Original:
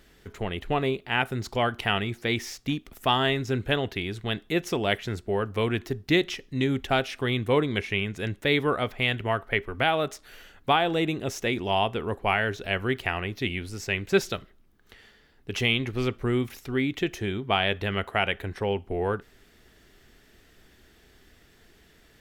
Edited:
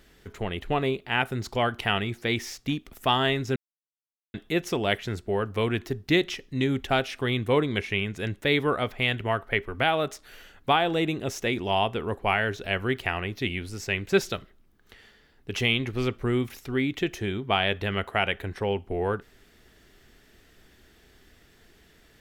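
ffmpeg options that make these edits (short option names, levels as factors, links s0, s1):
-filter_complex "[0:a]asplit=3[s0][s1][s2];[s0]atrim=end=3.56,asetpts=PTS-STARTPTS,afade=t=out:st=3.556:d=0.004:c=hsin[s3];[s1]atrim=start=3.56:end=4.34,asetpts=PTS-STARTPTS,volume=0[s4];[s2]atrim=start=4.34,asetpts=PTS-STARTPTS,afade=t=in:d=0.004:c=hsin[s5];[s3][s4][s5]concat=n=3:v=0:a=1"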